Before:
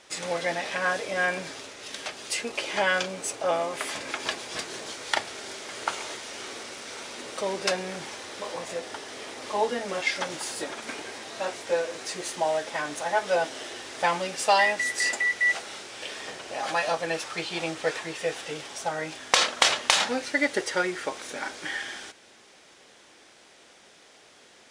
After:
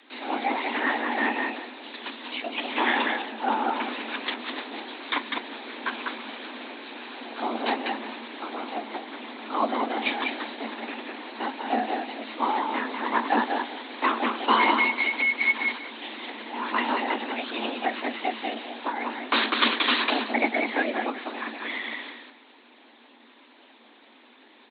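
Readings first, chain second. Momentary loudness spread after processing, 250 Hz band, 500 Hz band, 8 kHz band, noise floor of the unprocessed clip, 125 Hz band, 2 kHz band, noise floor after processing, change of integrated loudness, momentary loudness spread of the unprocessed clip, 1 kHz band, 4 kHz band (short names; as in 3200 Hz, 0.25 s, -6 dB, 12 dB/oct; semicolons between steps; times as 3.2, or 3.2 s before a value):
14 LU, +7.0 dB, -3.5 dB, under -40 dB, -55 dBFS, n/a, +1.0 dB, -54 dBFS, +1.0 dB, 14 LU, +3.5 dB, -0.5 dB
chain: feedback echo 0.191 s, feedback 18%, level -4 dB; LPC vocoder at 8 kHz whisper; frequency shift +220 Hz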